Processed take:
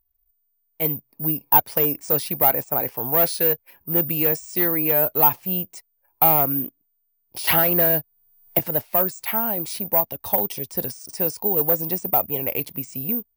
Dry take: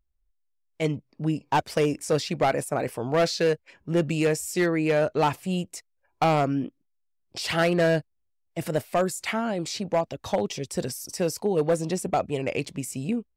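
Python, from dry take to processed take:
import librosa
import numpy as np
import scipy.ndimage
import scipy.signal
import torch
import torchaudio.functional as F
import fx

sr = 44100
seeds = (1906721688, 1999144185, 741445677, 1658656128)

y = fx.peak_eq(x, sr, hz=890.0, db=7.5, octaves=0.47)
y = (np.kron(scipy.signal.resample_poly(y, 1, 3), np.eye(3)[0]) * 3)[:len(y)]
y = fx.band_squash(y, sr, depth_pct=100, at=(7.47, 8.59))
y = y * librosa.db_to_amplitude(-2.5)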